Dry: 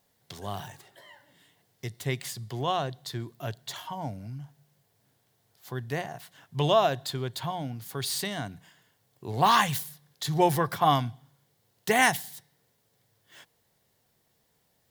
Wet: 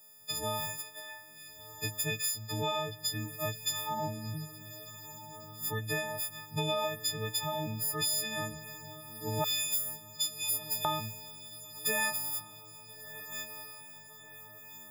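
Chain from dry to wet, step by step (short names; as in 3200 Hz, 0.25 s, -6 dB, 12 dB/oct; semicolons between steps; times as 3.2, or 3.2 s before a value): frequency quantiser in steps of 6 st; 9.44–10.85 steep high-pass 2500 Hz 36 dB/oct; compressor 6:1, threshold -30 dBFS, peak gain reduction 18.5 dB; diffused feedback echo 1.351 s, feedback 55%, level -13.5 dB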